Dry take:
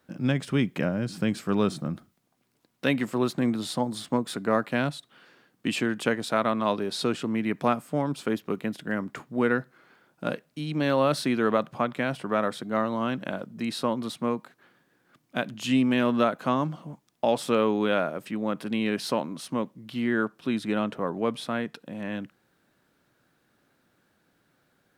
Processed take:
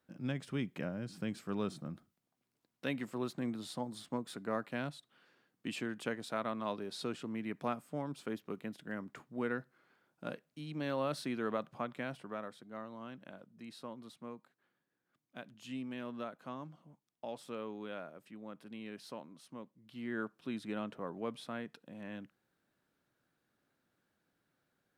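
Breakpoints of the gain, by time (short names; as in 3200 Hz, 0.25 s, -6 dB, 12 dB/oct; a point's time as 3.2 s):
12.07 s -12.5 dB
12.55 s -19.5 dB
19.75 s -19.5 dB
20.19 s -12.5 dB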